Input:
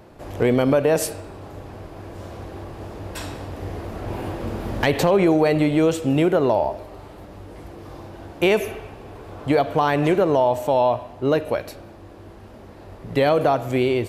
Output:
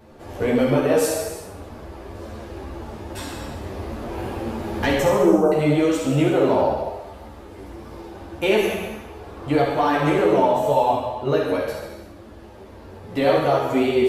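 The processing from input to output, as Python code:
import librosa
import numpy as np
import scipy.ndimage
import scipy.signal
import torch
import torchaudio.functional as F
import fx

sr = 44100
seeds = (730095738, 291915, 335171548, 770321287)

p1 = fx.brickwall_bandstop(x, sr, low_hz=1600.0, high_hz=5100.0, at=(4.95, 5.52))
p2 = p1 + fx.room_flutter(p1, sr, wall_m=11.2, rt60_s=0.64, dry=0)
p3 = fx.rev_gated(p2, sr, seeds[0], gate_ms=410, shape='falling', drr_db=0.0)
y = fx.ensemble(p3, sr)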